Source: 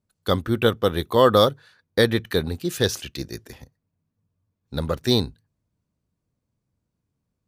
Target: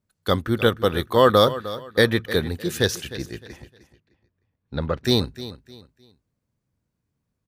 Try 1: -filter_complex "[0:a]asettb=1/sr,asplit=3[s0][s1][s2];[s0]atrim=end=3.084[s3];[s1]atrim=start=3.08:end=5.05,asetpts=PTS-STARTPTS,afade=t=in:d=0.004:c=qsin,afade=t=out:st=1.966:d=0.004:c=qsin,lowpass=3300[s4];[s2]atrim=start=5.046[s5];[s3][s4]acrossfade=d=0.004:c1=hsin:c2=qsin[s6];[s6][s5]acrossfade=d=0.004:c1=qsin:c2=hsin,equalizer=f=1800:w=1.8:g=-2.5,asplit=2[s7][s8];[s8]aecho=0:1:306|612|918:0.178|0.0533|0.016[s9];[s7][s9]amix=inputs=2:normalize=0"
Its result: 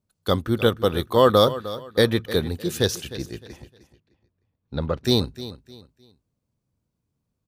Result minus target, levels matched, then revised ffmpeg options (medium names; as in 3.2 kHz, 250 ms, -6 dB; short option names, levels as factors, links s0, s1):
2 kHz band -4.5 dB
-filter_complex "[0:a]asettb=1/sr,asplit=3[s0][s1][s2];[s0]atrim=end=3.084[s3];[s1]atrim=start=3.08:end=5.05,asetpts=PTS-STARTPTS,afade=t=in:d=0.004:c=qsin,afade=t=out:st=1.966:d=0.004:c=qsin,lowpass=3300[s4];[s2]atrim=start=5.046[s5];[s3][s4]acrossfade=d=0.004:c1=hsin:c2=qsin[s6];[s6][s5]acrossfade=d=0.004:c1=qsin:c2=hsin,equalizer=f=1800:w=1.8:g=3.5,asplit=2[s7][s8];[s8]aecho=0:1:306|612|918:0.178|0.0533|0.016[s9];[s7][s9]amix=inputs=2:normalize=0"